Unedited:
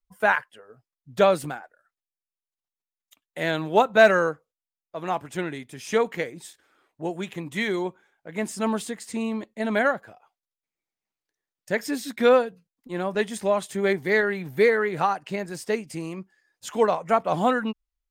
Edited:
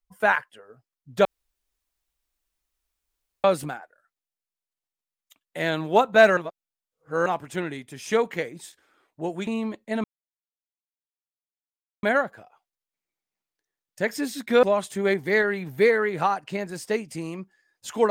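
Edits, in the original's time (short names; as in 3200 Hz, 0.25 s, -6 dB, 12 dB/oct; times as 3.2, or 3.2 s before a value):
1.25 insert room tone 2.19 s
4.18–5.07 reverse
7.28–9.16 cut
9.73 insert silence 1.99 s
12.33–13.42 cut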